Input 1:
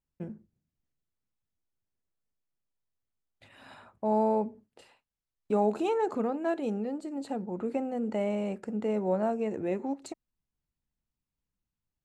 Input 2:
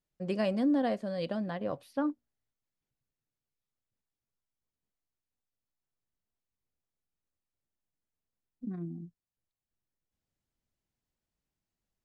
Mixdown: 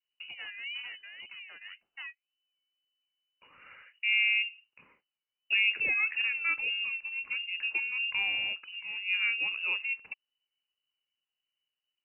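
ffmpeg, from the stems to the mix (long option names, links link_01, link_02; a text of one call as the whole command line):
ffmpeg -i stem1.wav -i stem2.wav -filter_complex "[0:a]bandreject=frequency=2300:width=19,adynamicequalizer=threshold=0.00562:dfrequency=1900:dqfactor=0.7:tfrequency=1900:tqfactor=0.7:attack=5:release=100:ratio=0.375:range=3:mode=boostabove:tftype=highshelf,volume=-1dB[link_01];[1:a]aeval=exprs='val(0)*sin(2*PI*510*n/s+510*0.55/1.9*sin(2*PI*1.9*n/s))':channel_layout=same,volume=-10dB,asplit=2[link_02][link_03];[link_03]apad=whole_len=531056[link_04];[link_01][link_04]sidechaincompress=threshold=-58dB:ratio=4:attack=8:release=207[link_05];[link_05][link_02]amix=inputs=2:normalize=0,lowpass=frequency=2600:width_type=q:width=0.5098,lowpass=frequency=2600:width_type=q:width=0.6013,lowpass=frequency=2600:width_type=q:width=0.9,lowpass=frequency=2600:width_type=q:width=2.563,afreqshift=-3000" out.wav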